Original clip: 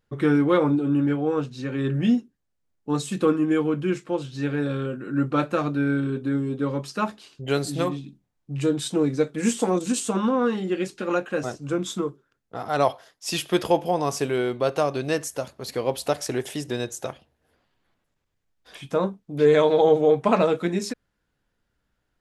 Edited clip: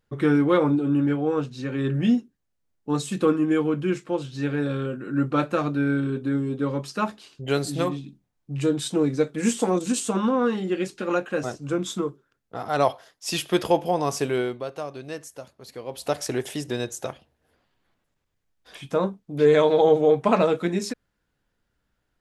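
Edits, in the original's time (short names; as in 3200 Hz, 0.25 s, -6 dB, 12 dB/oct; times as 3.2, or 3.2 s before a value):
14.38–16.17 dip -10 dB, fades 0.28 s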